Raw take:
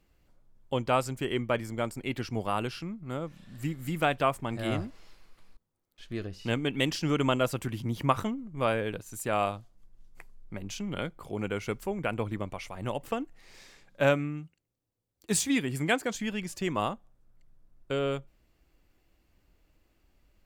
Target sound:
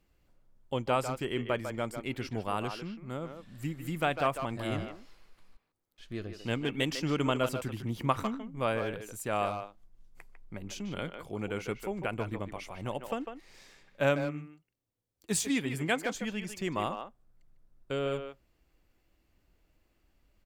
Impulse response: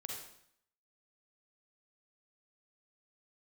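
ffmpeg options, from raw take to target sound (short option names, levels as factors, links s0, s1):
-filter_complex "[0:a]asplit=2[s0][s1];[s1]adelay=150,highpass=300,lowpass=3400,asoftclip=type=hard:threshold=0.119,volume=0.447[s2];[s0][s2]amix=inputs=2:normalize=0,volume=0.708"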